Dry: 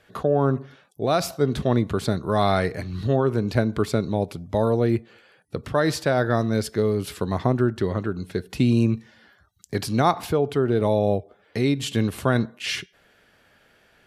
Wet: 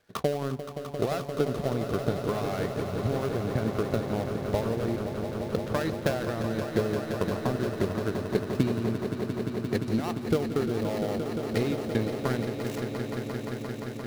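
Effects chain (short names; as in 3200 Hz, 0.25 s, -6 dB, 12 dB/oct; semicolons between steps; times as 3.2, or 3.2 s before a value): switching dead time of 0.17 ms; limiter -14 dBFS, peak gain reduction 8 dB; transient shaper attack +11 dB, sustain -7 dB; swelling echo 0.174 s, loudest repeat 5, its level -10 dB; gain -9 dB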